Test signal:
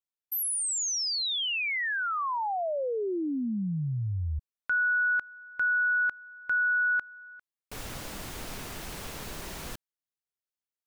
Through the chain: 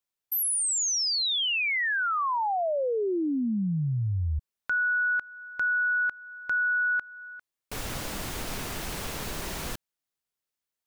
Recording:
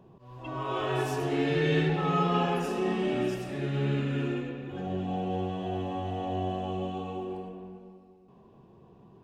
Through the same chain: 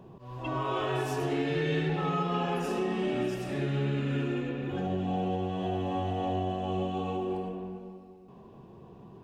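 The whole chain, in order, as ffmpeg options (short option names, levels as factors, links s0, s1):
-af "acompressor=threshold=0.0316:ratio=3:attack=0.81:release=555:knee=1:detection=rms,volume=1.78"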